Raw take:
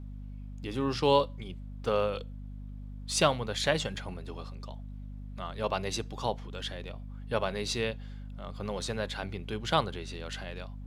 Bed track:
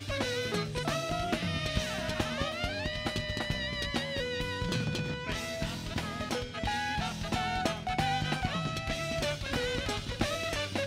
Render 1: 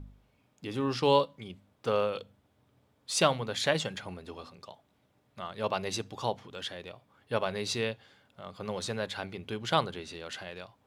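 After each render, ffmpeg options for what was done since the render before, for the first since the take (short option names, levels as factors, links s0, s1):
-af "bandreject=f=50:t=h:w=4,bandreject=f=100:t=h:w=4,bandreject=f=150:t=h:w=4,bandreject=f=200:t=h:w=4,bandreject=f=250:t=h:w=4"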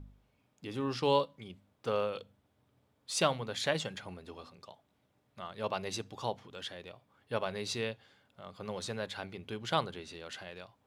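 -af "volume=0.631"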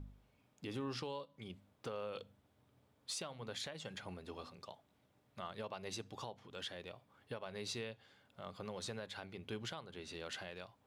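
-af "acompressor=threshold=0.02:ratio=5,alimiter=level_in=2.51:limit=0.0631:level=0:latency=1:release=485,volume=0.398"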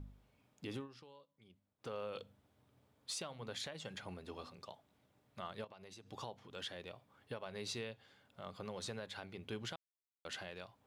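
-filter_complex "[0:a]asettb=1/sr,asplit=3[s0][s1][s2];[s0]atrim=end=5.644[s3];[s1]atrim=start=5.64:end=6.11,asetpts=PTS-STARTPTS,afade=t=in:d=0.004:c=qsin,afade=t=out:st=0.466:d=0.004:c=qsin,acompressor=threshold=0.00251:ratio=6:attack=3.2:release=140:knee=1:detection=peak[s4];[s2]atrim=start=6.106[s5];[s3][s4]acrossfade=d=0.004:c1=hsin:c2=qsin[s6];[s6][s5]acrossfade=d=0.004:c1=qsin:c2=hsin,asplit=5[s7][s8][s9][s10][s11];[s7]atrim=end=0.88,asetpts=PTS-STARTPTS,afade=t=out:st=0.75:d=0.13:silence=0.16788[s12];[s8]atrim=start=0.88:end=1.78,asetpts=PTS-STARTPTS,volume=0.168[s13];[s9]atrim=start=1.78:end=9.76,asetpts=PTS-STARTPTS,afade=t=in:d=0.13:silence=0.16788,afade=t=out:st=7.976:d=0.004:c=hsin[s14];[s10]atrim=start=9.76:end=10.25,asetpts=PTS-STARTPTS,volume=0[s15];[s11]atrim=start=10.25,asetpts=PTS-STARTPTS,afade=t=in:d=0.004:c=hsin[s16];[s12][s13][s14][s15][s16]concat=n=5:v=0:a=1"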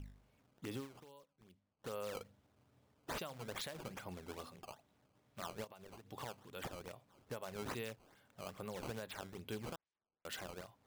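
-af "acrusher=samples=14:mix=1:aa=0.000001:lfo=1:lforange=22.4:lforate=2.4"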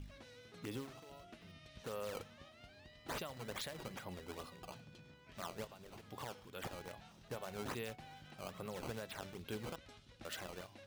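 -filter_complex "[1:a]volume=0.0531[s0];[0:a][s0]amix=inputs=2:normalize=0"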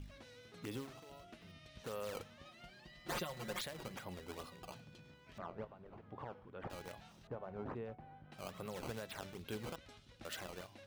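-filter_complex "[0:a]asettb=1/sr,asplit=3[s0][s1][s2];[s0]atrim=end=2.454[s3];[s1]atrim=start=2.45:end=3.61,asetpts=PTS-STARTPTS,afade=t=in:d=0.004:c=qsin,afade=t=out:st=1.156:d=0.004:c=qsin,aecho=1:1:5.6:0.96,atrim=end_sample=51156[s4];[s2]atrim=start=3.606[s5];[s3][s4]acrossfade=d=0.004:c1=hsin:c2=qsin[s6];[s6][s5]acrossfade=d=0.004:c1=qsin:c2=hsin,asettb=1/sr,asplit=3[s7][s8][s9];[s7]atrim=end=5.384[s10];[s8]atrim=start=5.38:end=6.7,asetpts=PTS-STARTPTS,afade=t=in:d=0.004:c=qsin,afade=t=out:st=1.316:d=0.004:c=qsin,lowpass=1400[s11];[s9]atrim=start=6.696[s12];[s10][s11]acrossfade=d=0.004:c1=hsin:c2=qsin[s13];[s13][s12]acrossfade=d=0.004:c1=qsin:c2=hsin,asettb=1/sr,asplit=3[s14][s15][s16];[s14]atrim=end=7.274[s17];[s15]atrim=start=7.27:end=8.32,asetpts=PTS-STARTPTS,afade=t=in:d=0.004:c=qsin,afade=t=out:st=1.046:d=0.004:c=qsin,lowpass=1100[s18];[s16]atrim=start=8.316[s19];[s17][s18]acrossfade=d=0.004:c1=hsin:c2=qsin[s20];[s20][s19]acrossfade=d=0.004:c1=qsin:c2=hsin"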